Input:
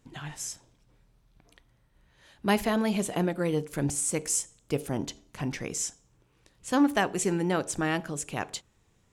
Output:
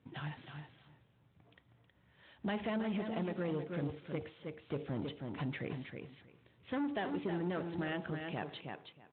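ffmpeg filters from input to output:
-af "asetnsamples=n=441:p=0,asendcmd='7.88 equalizer g -6',equalizer=f=84:w=2.2:g=6,asoftclip=type=tanh:threshold=-25.5dB,aecho=1:1:318|636|954:0.447|0.0715|0.0114,acompressor=threshold=-32dB:ratio=4,asoftclip=type=hard:threshold=-28dB,volume=-2.5dB" -ar 8000 -c:a libspeex -b:a 18k

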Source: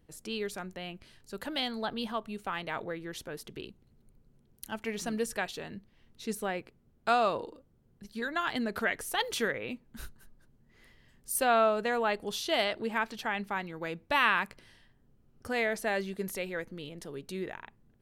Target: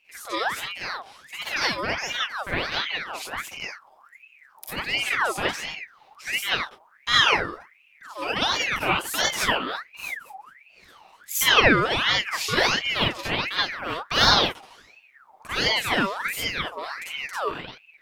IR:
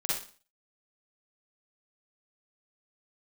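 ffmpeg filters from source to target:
-filter_complex "[0:a]asettb=1/sr,asplit=3[a][b][c];[a]atrim=end=4.884[d];[b]atrim=start=4.88:end=5.49,asetpts=PTS-STARTPTS,afade=t=in:d=0.004:c=qsin,afade=t=out:st=0.606:d=0.004:c=qsin,bass=f=250:g=6,treble=f=4k:g=-4[e];[c]atrim=start=5.486[f];[d][e]acrossfade=d=0.004:c1=hsin:c2=qsin[g];[g][f]acrossfade=d=0.004:c1=qsin:c2=hsin[h];[1:a]atrim=start_sample=2205,afade=t=out:st=0.14:d=0.01,atrim=end_sample=6615[i];[h][i]afir=irnorm=-1:irlink=0,aeval=exprs='val(0)*sin(2*PI*1700*n/s+1700*0.55/1.4*sin(2*PI*1.4*n/s))':c=same,volume=5dB"

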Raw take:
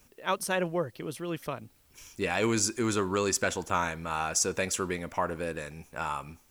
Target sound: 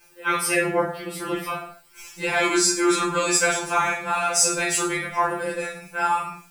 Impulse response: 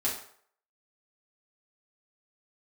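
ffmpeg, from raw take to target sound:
-filter_complex "[0:a]aeval=exprs='val(0)*sin(2*PI*21*n/s)':c=same[a];[1:a]atrim=start_sample=2205,afade=t=out:st=0.29:d=0.01,atrim=end_sample=13230[b];[a][b]afir=irnorm=-1:irlink=0,afftfilt=real='re*2.83*eq(mod(b,8),0)':imag='im*2.83*eq(mod(b,8),0)':win_size=2048:overlap=0.75,volume=8.5dB"

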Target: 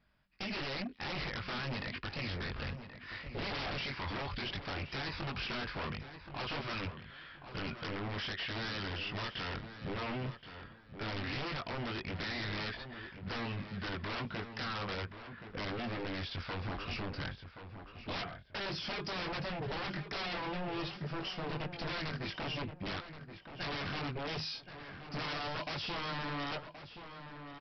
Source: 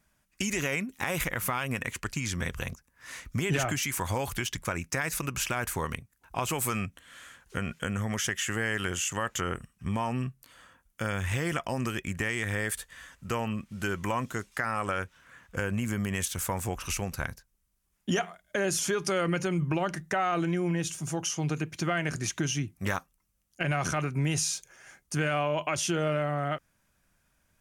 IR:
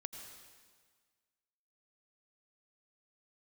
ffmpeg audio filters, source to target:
-filter_complex "[0:a]asplit=2[a][b];[b]adelay=21,volume=-3dB[c];[a][c]amix=inputs=2:normalize=0,aresample=11025,aeval=exprs='0.0316*(abs(mod(val(0)/0.0316+3,4)-2)-1)':c=same,aresample=44100,asplit=2[d][e];[e]adelay=1075,lowpass=f=2.4k:p=1,volume=-9.5dB,asplit=2[f][g];[g]adelay=1075,lowpass=f=2.4k:p=1,volume=0.3,asplit=2[h][i];[i]adelay=1075,lowpass=f=2.4k:p=1,volume=0.3[j];[d][f][h][j]amix=inputs=4:normalize=0,volume=-3.5dB"

